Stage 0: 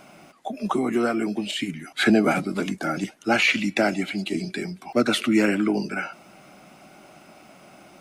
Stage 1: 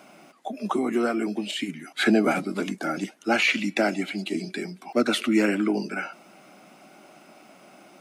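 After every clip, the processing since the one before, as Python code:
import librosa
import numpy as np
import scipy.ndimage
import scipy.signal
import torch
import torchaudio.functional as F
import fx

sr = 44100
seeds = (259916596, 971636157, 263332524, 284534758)

y = scipy.signal.sosfilt(scipy.signal.cheby1(2, 1.0, 230.0, 'highpass', fs=sr, output='sos'), x)
y = F.gain(torch.from_numpy(y), -1.0).numpy()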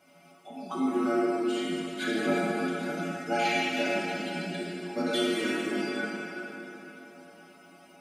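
y = fx.peak_eq(x, sr, hz=100.0, db=8.0, octaves=1.3)
y = fx.stiff_resonator(y, sr, f0_hz=84.0, decay_s=0.47, stiffness=0.008)
y = fx.rev_plate(y, sr, seeds[0], rt60_s=3.7, hf_ratio=0.75, predelay_ms=0, drr_db=-6.0)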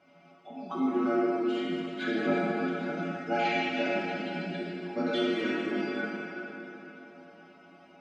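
y = fx.air_absorb(x, sr, metres=180.0)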